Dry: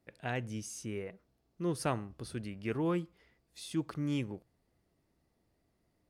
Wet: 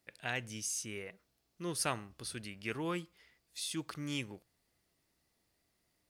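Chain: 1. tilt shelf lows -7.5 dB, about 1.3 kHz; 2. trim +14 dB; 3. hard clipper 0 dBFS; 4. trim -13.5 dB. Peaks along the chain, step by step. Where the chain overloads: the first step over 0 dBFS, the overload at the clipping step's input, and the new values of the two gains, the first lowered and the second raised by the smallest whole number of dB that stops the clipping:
-18.0 dBFS, -4.0 dBFS, -4.0 dBFS, -17.5 dBFS; nothing clips

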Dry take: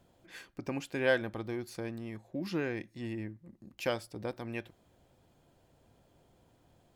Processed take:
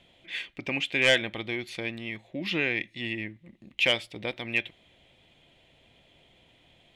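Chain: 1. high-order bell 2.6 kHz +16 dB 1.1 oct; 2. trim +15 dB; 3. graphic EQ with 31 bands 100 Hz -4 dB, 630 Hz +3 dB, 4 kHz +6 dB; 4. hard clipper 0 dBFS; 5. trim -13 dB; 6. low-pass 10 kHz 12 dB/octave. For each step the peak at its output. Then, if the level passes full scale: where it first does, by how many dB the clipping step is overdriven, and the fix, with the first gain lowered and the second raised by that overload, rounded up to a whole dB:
-8.5 dBFS, +6.5 dBFS, +7.5 dBFS, 0.0 dBFS, -13.0 dBFS, -12.0 dBFS; step 2, 7.5 dB; step 2 +7 dB, step 5 -5 dB

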